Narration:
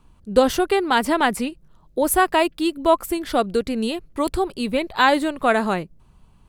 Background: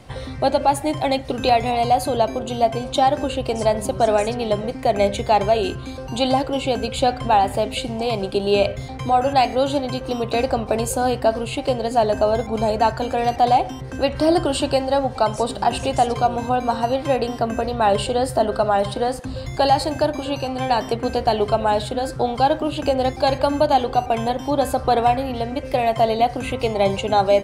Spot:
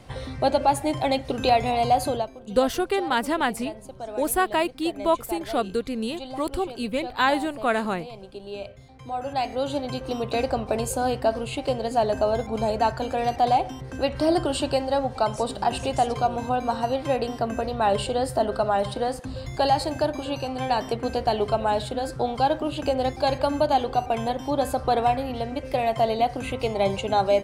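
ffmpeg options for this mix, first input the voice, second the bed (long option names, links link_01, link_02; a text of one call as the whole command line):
ffmpeg -i stem1.wav -i stem2.wav -filter_complex "[0:a]adelay=2200,volume=-5dB[link_01];[1:a]volume=10.5dB,afade=type=out:start_time=2.09:duration=0.2:silence=0.177828,afade=type=in:start_time=8.94:duration=1.06:silence=0.211349[link_02];[link_01][link_02]amix=inputs=2:normalize=0" out.wav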